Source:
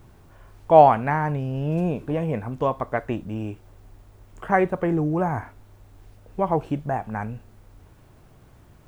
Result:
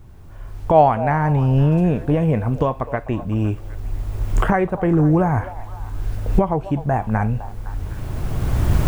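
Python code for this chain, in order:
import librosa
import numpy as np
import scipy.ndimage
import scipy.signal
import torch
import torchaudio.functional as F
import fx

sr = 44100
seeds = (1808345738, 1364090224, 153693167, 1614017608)

y = fx.recorder_agc(x, sr, target_db=-10.0, rise_db_per_s=15.0, max_gain_db=30)
y = fx.low_shelf(y, sr, hz=120.0, db=11.5)
y = fx.echo_stepped(y, sr, ms=255, hz=680.0, octaves=0.7, feedback_pct=70, wet_db=-12)
y = y * 10.0 ** (-1.0 / 20.0)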